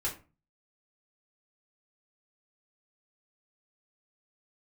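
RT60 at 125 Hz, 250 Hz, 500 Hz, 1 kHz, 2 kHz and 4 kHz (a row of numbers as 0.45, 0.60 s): 0.55, 0.45, 0.35, 0.35, 0.30, 0.20 s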